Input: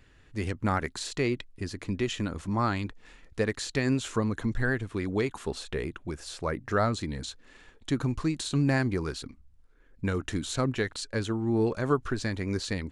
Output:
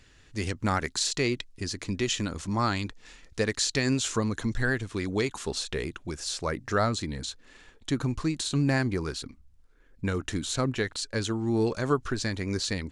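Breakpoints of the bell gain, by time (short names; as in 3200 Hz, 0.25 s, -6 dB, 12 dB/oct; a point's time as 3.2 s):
bell 5900 Hz 1.7 oct
6.59 s +10.5 dB
7.12 s +4 dB
11.03 s +4 dB
11.48 s +14 dB
11.96 s +6.5 dB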